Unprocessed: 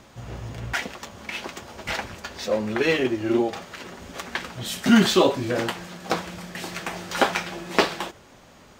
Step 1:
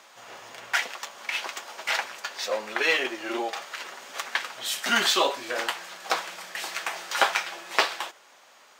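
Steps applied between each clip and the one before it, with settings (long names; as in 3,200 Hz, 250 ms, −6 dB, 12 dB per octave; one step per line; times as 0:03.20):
high-pass filter 780 Hz 12 dB per octave
in parallel at −1 dB: speech leveller 2 s
on the sum: level −4.5 dB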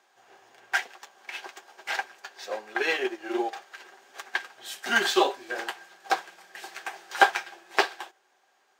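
hollow resonant body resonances 380/760/1,600 Hz, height 12 dB, ringing for 45 ms
expander for the loud parts 1.5 to 1, over −40 dBFS
level −1 dB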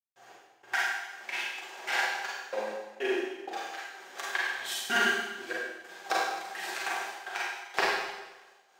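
downward compressor 2 to 1, threshold −32 dBFS, peak gain reduction 11.5 dB
gate pattern ".x..x..xx.xxxxx" 95 BPM −60 dB
four-comb reverb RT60 1.1 s, combs from 33 ms, DRR −5.5 dB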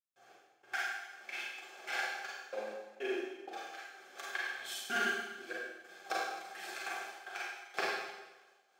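notch comb filter 950 Hz
level −6.5 dB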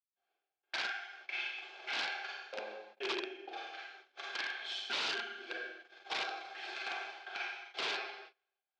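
noise gate −53 dBFS, range −25 dB
wrap-around overflow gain 30 dB
loudspeaker in its box 470–4,300 Hz, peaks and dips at 530 Hz −7 dB, 760 Hz −4 dB, 1,200 Hz −7 dB, 1,800 Hz −7 dB
level +5 dB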